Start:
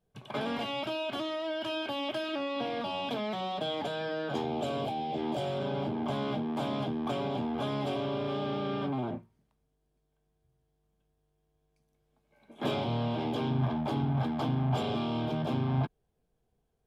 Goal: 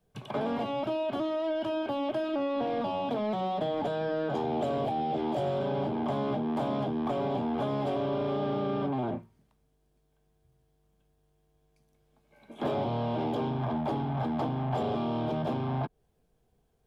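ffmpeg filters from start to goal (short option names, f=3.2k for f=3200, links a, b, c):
-filter_complex "[0:a]acrossover=split=420|1100[a][b][c];[a]alimiter=level_in=8dB:limit=-24dB:level=0:latency=1:release=151,volume=-8dB[d];[c]acompressor=threshold=-52dB:ratio=6[e];[d][b][e]amix=inputs=3:normalize=0,asoftclip=type=tanh:threshold=-26dB,volume=5.5dB"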